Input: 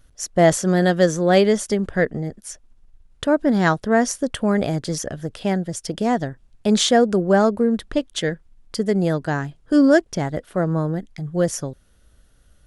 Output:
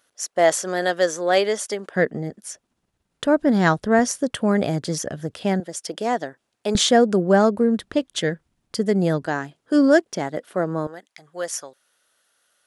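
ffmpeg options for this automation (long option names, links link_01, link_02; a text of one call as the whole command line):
ffmpeg -i in.wav -af "asetnsamples=nb_out_samples=441:pad=0,asendcmd='1.96 highpass f 160;3.25 highpass f 49;3.99 highpass f 110;5.6 highpass f 370;6.75 highpass f 97;9.26 highpass f 250;10.87 highpass f 770',highpass=490" out.wav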